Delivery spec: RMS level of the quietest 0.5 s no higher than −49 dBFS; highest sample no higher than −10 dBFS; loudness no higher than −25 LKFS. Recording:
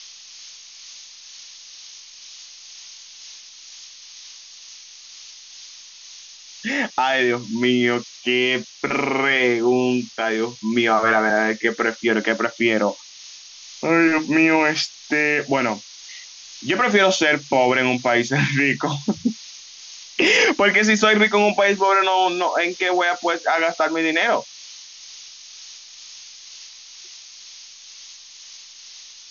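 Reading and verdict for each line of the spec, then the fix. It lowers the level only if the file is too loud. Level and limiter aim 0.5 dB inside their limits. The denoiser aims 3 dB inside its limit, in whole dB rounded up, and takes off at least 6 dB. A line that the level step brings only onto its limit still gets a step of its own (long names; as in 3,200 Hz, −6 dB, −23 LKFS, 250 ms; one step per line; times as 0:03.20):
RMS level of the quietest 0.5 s −42 dBFS: out of spec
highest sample −4.5 dBFS: out of spec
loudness −19.0 LKFS: out of spec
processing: broadband denoise 6 dB, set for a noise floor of −42 dBFS
level −6.5 dB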